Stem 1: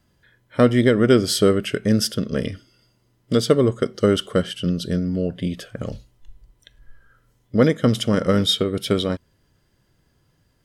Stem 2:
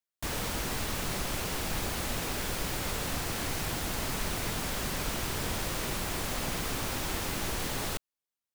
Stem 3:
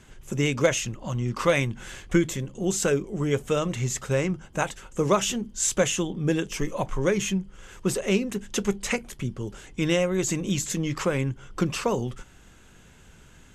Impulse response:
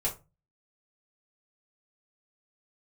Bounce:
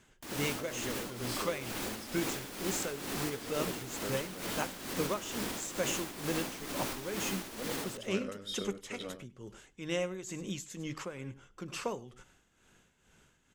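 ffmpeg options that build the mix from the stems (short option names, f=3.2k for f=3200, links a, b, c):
-filter_complex "[0:a]volume=-16dB,asplit=2[a][b];[b]volume=-10.5dB[c];[1:a]equalizer=f=280:w=1.4:g=10.5,volume=0dB,asplit=2[d][e];[e]volume=-22dB[f];[2:a]volume=-8.5dB,asplit=2[g][h];[h]volume=-17.5dB[i];[a][d]amix=inputs=2:normalize=0,lowshelf=f=480:g=-5,alimiter=level_in=1.5dB:limit=-24dB:level=0:latency=1:release=81,volume=-1.5dB,volume=0dB[j];[c][f][i]amix=inputs=3:normalize=0,aecho=0:1:100:1[k];[g][j][k]amix=inputs=3:normalize=0,lowshelf=f=140:g=-9,tremolo=f=2.2:d=0.66"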